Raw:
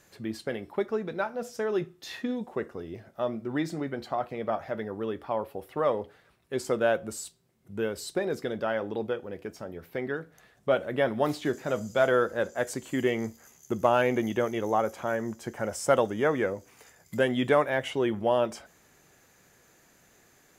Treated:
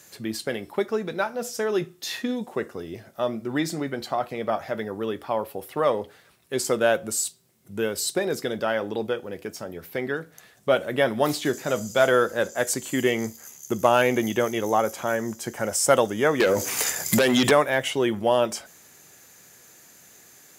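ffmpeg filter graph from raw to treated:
ffmpeg -i in.wav -filter_complex "[0:a]asettb=1/sr,asplit=3[link_01][link_02][link_03];[link_01]atrim=end=16.404[link_04];[link_02]atrim=start=16.4:end=17.51,asetpts=PTS-STARTPTS,afade=type=in:duration=0.004:curve=qsin,afade=type=out:start_time=1.106:duration=0.004:curve=qsin,lowshelf=frequency=220:gain=-6,acompressor=threshold=-38dB:ratio=5:attack=3.2:release=140:knee=1:detection=peak,aeval=exprs='0.119*sin(PI/2*6.31*val(0)/0.119)':channel_layout=same[link_05];[link_03]atrim=start=17.506[link_06];[link_04][link_05]acrossfade=duration=0.004:curve1=hsin:curve2=qsin[link_07];[link_07][link_06]acrossfade=duration=0.004:curve1=qsin:curve2=hsin,highpass=82,highshelf=frequency=3700:gain=11.5,volume=3.5dB" out.wav

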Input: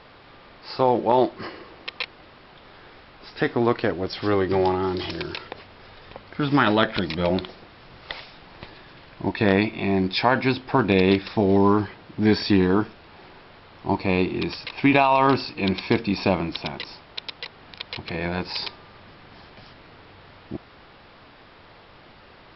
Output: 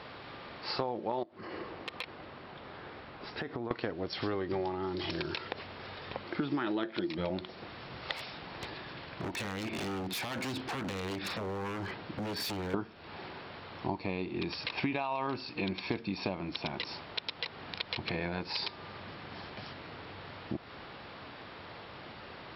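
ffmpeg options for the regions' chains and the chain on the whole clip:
ffmpeg -i in.wav -filter_complex "[0:a]asettb=1/sr,asplit=3[link_01][link_02][link_03];[link_01]atrim=end=1.234[link_04];[link_02]atrim=start=1.23:end=3.71,asetpts=PTS-STARTPTS,afade=type=in:duration=0.004:curve=qsin,afade=type=out:start_time=2.476:duration=0.004:curve=qsin,highshelf=frequency=2600:gain=-8,acompressor=threshold=-35dB:ratio=8:attack=3.2:release=140:knee=1:detection=peak,volume=27dB,asoftclip=hard,volume=-27dB[link_05];[link_03]atrim=start=3.706[link_06];[link_04][link_05]acrossfade=duration=0.004:curve1=hsin:curve2=qsin[link_07];[link_07][link_06]acrossfade=duration=0.004:curve1=qsin:curve2=hsin,asettb=1/sr,asplit=3[link_08][link_09][link_10];[link_08]atrim=end=6.254[link_11];[link_09]atrim=start=6.25:end=7.18,asetpts=PTS-STARTPTS,afade=type=in:duration=0.004:curve=qsin,afade=type=out:start_time=0.926:duration=0.004:curve=qsin,highpass=130,equalizer=frequency=340:width_type=o:width=0.23:gain=15[link_12];[link_10]atrim=start=7.176[link_13];[link_11][link_12]acrossfade=duration=0.004:curve1=hsin:curve2=qsin[link_14];[link_14][link_13]acrossfade=duration=0.004:curve1=qsin:curve2=hsin,asettb=1/sr,asplit=3[link_15][link_16][link_17];[link_15]atrim=end=8.154[link_18];[link_16]atrim=start=8.15:end=12.74,asetpts=PTS-STARTPTS,afade=type=in:duration=0.004:curve=qsin,afade=type=out:start_time=4.586:duration=0.004:curve=qsin,acompressor=threshold=-29dB:ratio=8:attack=3.2:release=140:knee=1:detection=peak,aeval=exprs='0.0251*(abs(mod(val(0)/0.0251+3,4)-2)-1)':channel_layout=same[link_19];[link_17]atrim=start=12.736[link_20];[link_18][link_19]acrossfade=duration=0.004:curve1=hsin:curve2=qsin[link_21];[link_21][link_20]acrossfade=duration=0.004:curve1=qsin:curve2=hsin,highpass=72,bandreject=frequency=5000:width=25,acompressor=threshold=-34dB:ratio=6,volume=2dB" out.wav

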